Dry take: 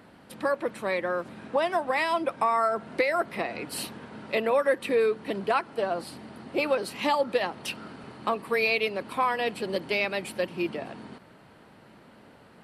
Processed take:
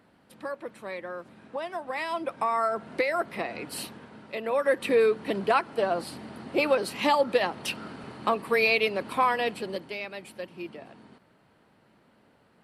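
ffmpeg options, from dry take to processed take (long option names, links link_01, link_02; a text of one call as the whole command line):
ffmpeg -i in.wav -af "volume=8.5dB,afade=type=in:start_time=1.73:duration=0.91:silence=0.446684,afade=type=out:start_time=3.71:duration=0.67:silence=0.473151,afade=type=in:start_time=4.38:duration=0.45:silence=0.316228,afade=type=out:start_time=9.29:duration=0.64:silence=0.281838" out.wav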